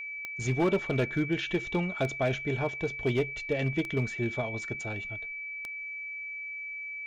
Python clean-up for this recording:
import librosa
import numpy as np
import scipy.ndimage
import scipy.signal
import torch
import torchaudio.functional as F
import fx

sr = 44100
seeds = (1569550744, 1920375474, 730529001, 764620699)

y = fx.fix_declip(x, sr, threshold_db=-20.0)
y = fx.fix_declick_ar(y, sr, threshold=10.0)
y = fx.notch(y, sr, hz=2300.0, q=30.0)